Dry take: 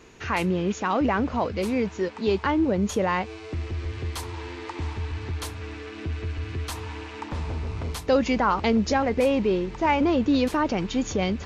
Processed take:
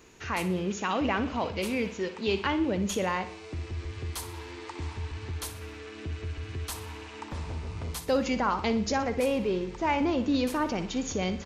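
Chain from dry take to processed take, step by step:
high-shelf EQ 7,500 Hz +11.5 dB
repeating echo 60 ms, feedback 46%, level −12 dB
0:00.77–0:03.09: dynamic equaliser 2,800 Hz, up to +8 dB, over −47 dBFS, Q 1.5
level −5.5 dB

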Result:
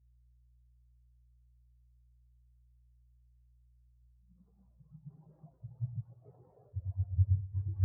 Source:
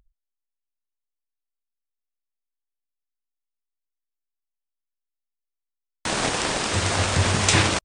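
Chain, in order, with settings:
adaptive Wiener filter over 41 samples
delay with pitch and tempo change per echo 270 ms, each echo +4 semitones, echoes 3, each echo −6 dB
delay that swaps between a low-pass and a high-pass 123 ms, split 970 Hz, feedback 80%, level −4 dB
mains hum 60 Hz, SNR 12 dB
high-pass filter 74 Hz 6 dB per octave
reversed playback
downward compressor 20 to 1, threshold −28 dBFS, peak gain reduction 16 dB
reversed playback
low-pass filter 2,000 Hz 12 dB per octave
parametric band 220 Hz −5.5 dB 0.79 octaves
every bin expanded away from the loudest bin 4 to 1
level +4 dB

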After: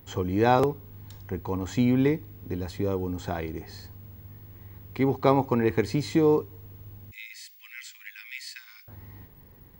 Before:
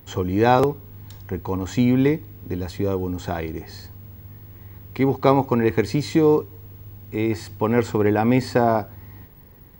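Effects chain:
0:07.11–0:08.88: Butterworth high-pass 2,000 Hz 36 dB per octave
level −4.5 dB

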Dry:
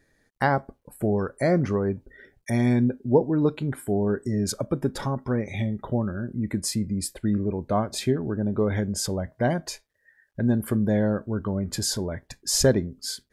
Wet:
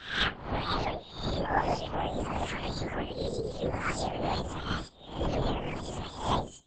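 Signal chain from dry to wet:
peak hold with a rise ahead of every peak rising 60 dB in 1.09 s
low-shelf EQ 410 Hz −4.5 dB
convolution reverb RT60 0.45 s, pre-delay 3 ms, DRR 1.5 dB
linear-prediction vocoder at 8 kHz whisper
wrong playback speed 7.5 ips tape played at 15 ips
level −5 dB

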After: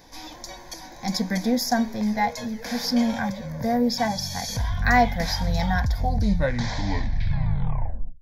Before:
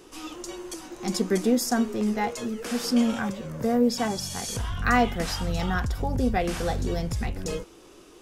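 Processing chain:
turntable brake at the end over 2.36 s
phaser with its sweep stopped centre 1,900 Hz, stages 8
level +5.5 dB

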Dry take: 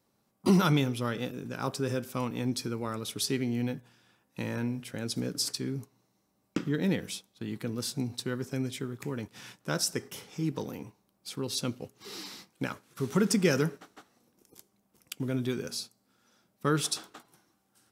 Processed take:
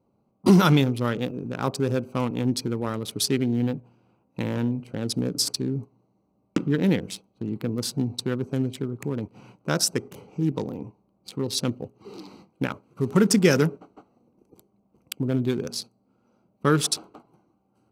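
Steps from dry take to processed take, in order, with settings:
adaptive Wiener filter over 25 samples
level +7 dB

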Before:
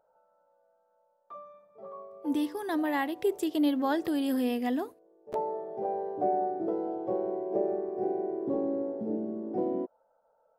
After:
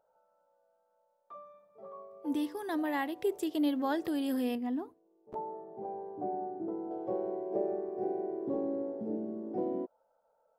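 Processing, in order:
0:04.55–0:06.91: drawn EQ curve 320 Hz 0 dB, 560 Hz −10 dB, 930 Hz −1 dB, 1,600 Hz −9 dB, 9,600 Hz −16 dB
level −3.5 dB

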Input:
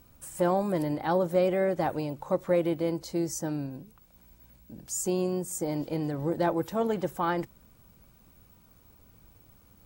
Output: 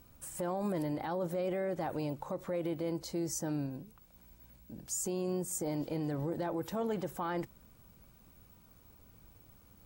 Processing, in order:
brickwall limiter −24.5 dBFS, peak gain reduction 11 dB
level −2 dB

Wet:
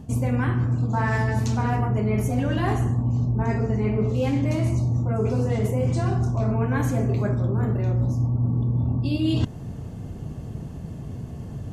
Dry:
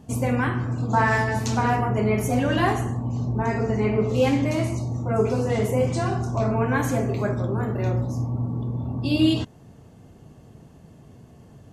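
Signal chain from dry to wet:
low-shelf EQ 210 Hz +11 dB
reversed playback
downward compressor 10 to 1, threshold −26 dBFS, peak gain reduction 16.5 dB
reversed playback
level +6.5 dB

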